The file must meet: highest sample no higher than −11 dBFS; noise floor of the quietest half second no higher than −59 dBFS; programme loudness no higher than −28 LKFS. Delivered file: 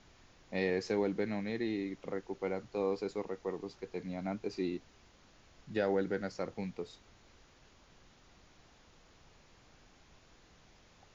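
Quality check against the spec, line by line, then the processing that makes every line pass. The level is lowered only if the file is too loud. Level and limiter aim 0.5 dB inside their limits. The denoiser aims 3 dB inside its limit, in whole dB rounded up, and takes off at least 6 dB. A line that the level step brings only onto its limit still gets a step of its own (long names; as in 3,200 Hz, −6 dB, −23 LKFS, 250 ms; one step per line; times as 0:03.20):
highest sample −19.5 dBFS: in spec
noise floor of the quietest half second −62 dBFS: in spec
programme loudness −37.0 LKFS: in spec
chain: no processing needed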